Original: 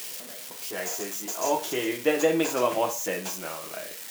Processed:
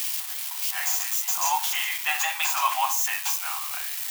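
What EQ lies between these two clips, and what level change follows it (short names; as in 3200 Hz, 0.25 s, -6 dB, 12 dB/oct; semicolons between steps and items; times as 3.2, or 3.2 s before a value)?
rippled Chebyshev high-pass 750 Hz, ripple 3 dB; high shelf 11000 Hz +8 dB; +6.5 dB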